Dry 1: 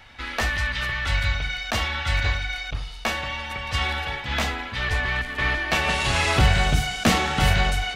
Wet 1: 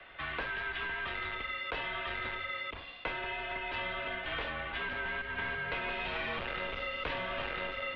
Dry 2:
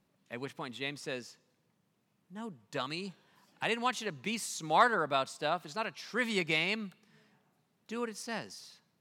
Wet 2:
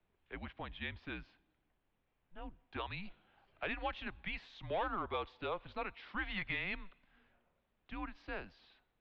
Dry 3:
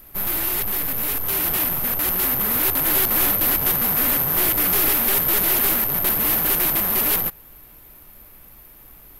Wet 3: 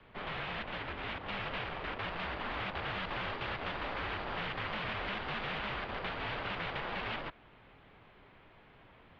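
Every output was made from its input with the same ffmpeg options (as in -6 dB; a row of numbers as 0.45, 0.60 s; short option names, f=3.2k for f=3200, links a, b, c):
-filter_complex "[0:a]asoftclip=type=tanh:threshold=-19.5dB,highpass=f=170:t=q:w=0.5412,highpass=f=170:t=q:w=1.307,lowpass=f=3.6k:t=q:w=0.5176,lowpass=f=3.6k:t=q:w=0.7071,lowpass=f=3.6k:t=q:w=1.932,afreqshift=-190,acrossover=split=91|490[a][b][c];[a]acompressor=threshold=-44dB:ratio=4[d];[b]acompressor=threshold=-44dB:ratio=4[e];[c]acompressor=threshold=-32dB:ratio=4[f];[d][e][f]amix=inputs=3:normalize=0,volume=-3dB"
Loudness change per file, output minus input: -12.5, -8.5, -20.0 LU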